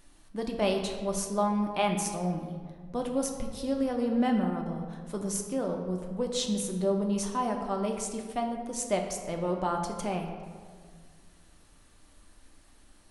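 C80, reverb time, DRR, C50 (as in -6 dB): 7.0 dB, 1.8 s, 2.0 dB, 5.5 dB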